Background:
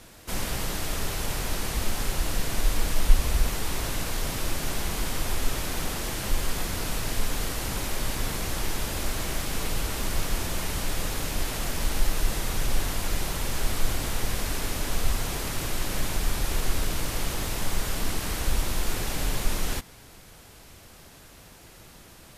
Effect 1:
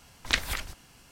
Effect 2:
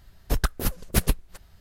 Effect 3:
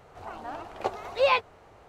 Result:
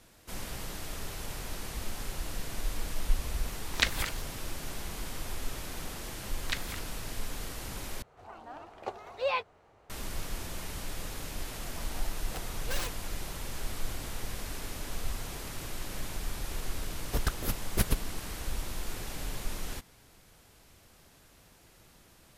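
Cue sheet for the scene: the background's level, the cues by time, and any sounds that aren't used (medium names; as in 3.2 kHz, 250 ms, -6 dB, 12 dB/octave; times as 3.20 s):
background -9.5 dB
3.49 s: add 1 -1 dB
6.19 s: add 1 -9 dB
8.02 s: replace with 3 -8 dB
11.50 s: add 3 -12.5 dB + integer overflow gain 19.5 dB
16.83 s: add 2 -6 dB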